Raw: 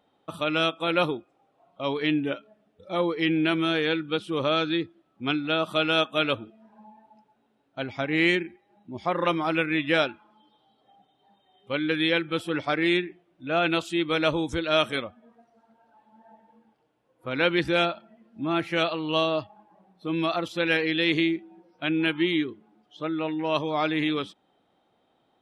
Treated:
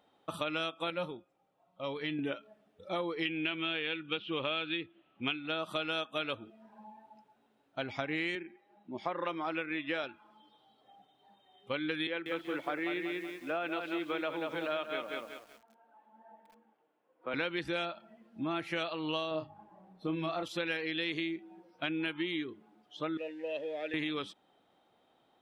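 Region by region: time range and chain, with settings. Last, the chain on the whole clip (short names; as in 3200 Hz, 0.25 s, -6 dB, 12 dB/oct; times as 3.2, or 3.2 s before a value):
0.9–2.19 low shelf 150 Hz +7.5 dB + resonator 180 Hz, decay 0.16 s, harmonics odd, mix 70%
3.25–5.46 LPF 3600 Hz 24 dB/oct + bell 2800 Hz +11.5 dB 0.69 oct
8.35–10.04 HPF 190 Hz + high shelf 5800 Hz -12 dB
12.07–17.34 Bessel high-pass 270 Hz, order 8 + air absorption 380 m + lo-fi delay 0.188 s, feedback 35%, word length 9-bit, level -6 dB
19.31–20.43 tilt -2 dB/oct + notches 50/100/150/200/250/300/350/400 Hz + doubler 32 ms -7 dB
23.17–23.94 zero-crossing step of -34.5 dBFS + vowel filter e + bell 260 Hz +7 dB 0.46 oct
whole clip: low shelf 350 Hz -5 dB; compressor, threshold -32 dBFS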